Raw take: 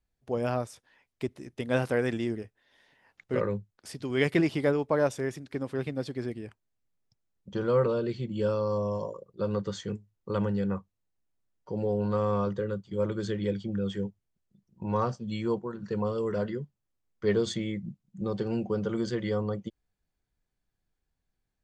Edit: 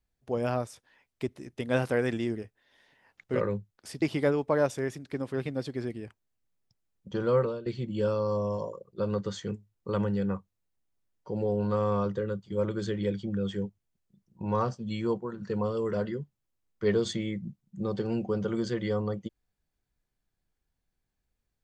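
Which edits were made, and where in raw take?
0:04.02–0:04.43: remove
0:07.77–0:08.07: fade out, to −17.5 dB

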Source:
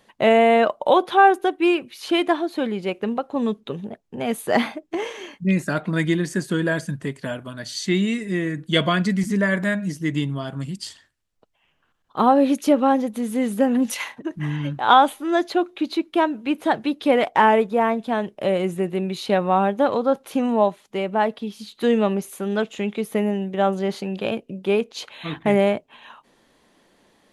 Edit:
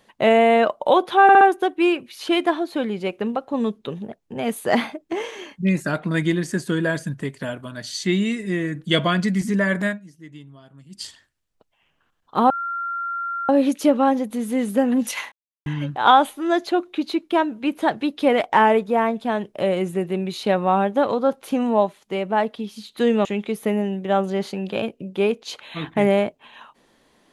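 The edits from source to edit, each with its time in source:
0:01.23: stutter 0.06 s, 4 plays
0:09.69–0:10.84: duck −18 dB, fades 0.13 s
0:12.32: insert tone 1,380 Hz −24 dBFS 0.99 s
0:14.15–0:14.49: silence
0:22.08–0:22.74: remove

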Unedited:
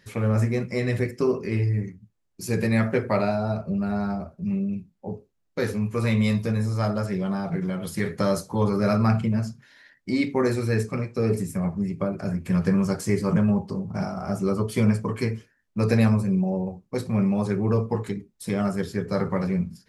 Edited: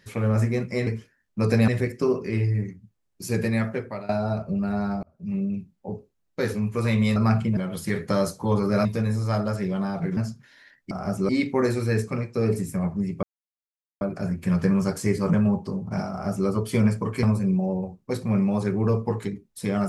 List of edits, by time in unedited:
0:02.55–0:03.28: fade out, to −18 dB
0:04.22–0:04.60: fade in
0:06.35–0:07.67: swap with 0:08.95–0:09.36
0:12.04: splice in silence 0.78 s
0:14.13–0:14.51: duplicate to 0:10.10
0:15.26–0:16.07: move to 0:00.87

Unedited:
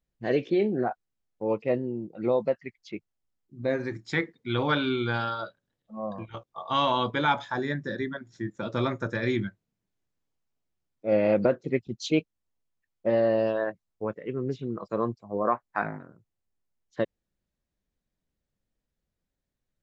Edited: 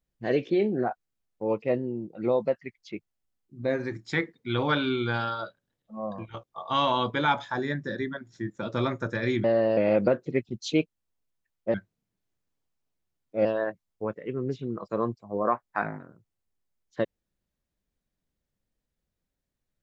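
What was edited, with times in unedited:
0:09.44–0:11.15: swap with 0:13.12–0:13.45

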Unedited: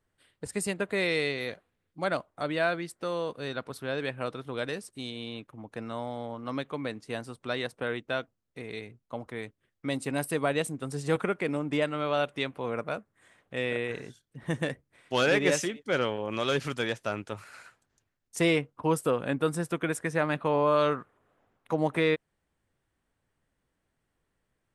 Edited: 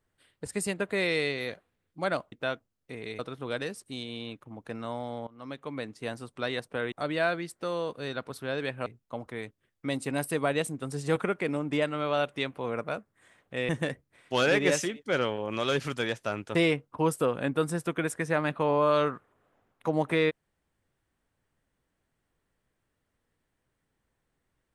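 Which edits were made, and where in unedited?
0:02.32–0:04.26: swap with 0:07.99–0:08.86
0:06.34–0:07.25: fade in equal-power, from −19 dB
0:13.69–0:14.49: remove
0:17.35–0:18.40: remove

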